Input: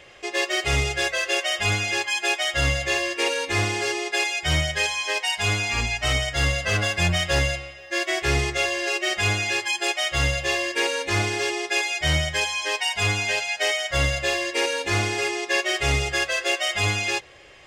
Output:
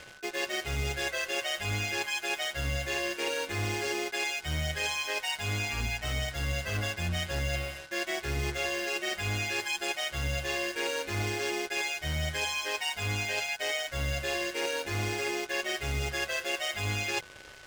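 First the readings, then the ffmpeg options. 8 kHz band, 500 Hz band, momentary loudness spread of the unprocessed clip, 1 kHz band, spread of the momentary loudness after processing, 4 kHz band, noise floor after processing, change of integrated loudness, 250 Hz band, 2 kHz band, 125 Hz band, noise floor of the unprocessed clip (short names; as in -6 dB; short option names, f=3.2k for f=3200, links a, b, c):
-8.5 dB, -7.5 dB, 2 LU, -8.5 dB, 2 LU, -9.0 dB, -48 dBFS, -8.5 dB, -7.0 dB, -9.0 dB, -7.0 dB, -41 dBFS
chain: -af "lowshelf=f=280:g=5,areverse,acompressor=threshold=-29dB:ratio=8,areverse,acrusher=bits=6:mix=0:aa=0.5,aeval=exprs='val(0)+0.00251*sin(2*PI*1500*n/s)':c=same,tremolo=f=150:d=0.333,volume=1.5dB"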